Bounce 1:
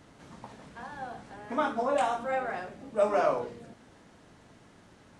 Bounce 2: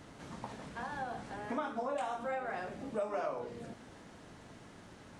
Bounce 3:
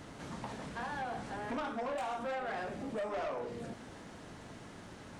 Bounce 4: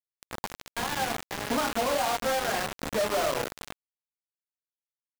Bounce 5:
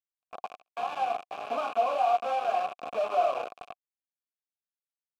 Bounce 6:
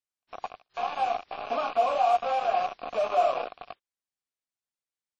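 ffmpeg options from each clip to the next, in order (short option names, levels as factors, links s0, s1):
-af "acompressor=threshold=0.0126:ratio=4,volume=1.33"
-af "asoftclip=type=tanh:threshold=0.0141,volume=1.58"
-af "acrusher=bits=5:mix=0:aa=0.000001,volume=2.24"
-filter_complex "[0:a]asplit=3[s0][s1][s2];[s0]bandpass=f=730:t=q:w=8,volume=1[s3];[s1]bandpass=f=1090:t=q:w=8,volume=0.501[s4];[s2]bandpass=f=2440:t=q:w=8,volume=0.355[s5];[s3][s4][s5]amix=inputs=3:normalize=0,agate=range=0.02:threshold=0.002:ratio=16:detection=peak,volume=2.37"
-filter_complex "[0:a]asplit=2[s0][s1];[s1]acrusher=bits=6:dc=4:mix=0:aa=0.000001,volume=0.251[s2];[s0][s2]amix=inputs=2:normalize=0" -ar 22050 -c:a wmav2 -b:a 32k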